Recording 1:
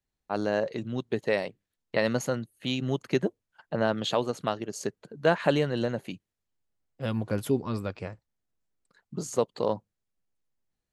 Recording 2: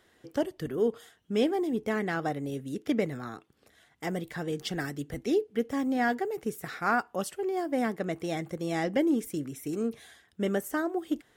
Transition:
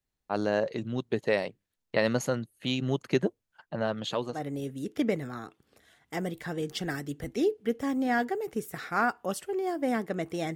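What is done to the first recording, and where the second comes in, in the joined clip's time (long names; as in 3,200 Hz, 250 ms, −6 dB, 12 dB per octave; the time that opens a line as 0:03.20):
recording 1
0:03.64–0:04.46: flanger 1.9 Hz, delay 0.6 ms, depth 1.2 ms, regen −63%
0:04.37: continue with recording 2 from 0:02.27, crossfade 0.18 s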